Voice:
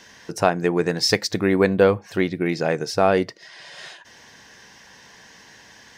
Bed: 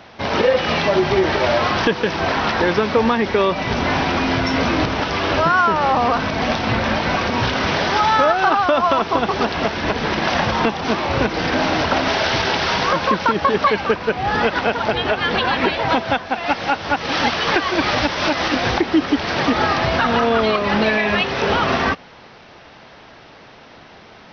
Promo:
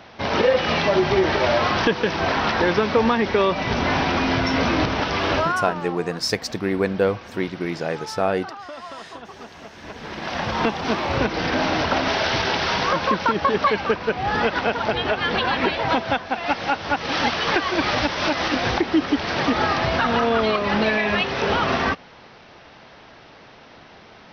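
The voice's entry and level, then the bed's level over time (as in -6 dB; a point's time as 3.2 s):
5.20 s, -4.0 dB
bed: 5.34 s -2 dB
6.04 s -20.5 dB
9.69 s -20.5 dB
10.65 s -3 dB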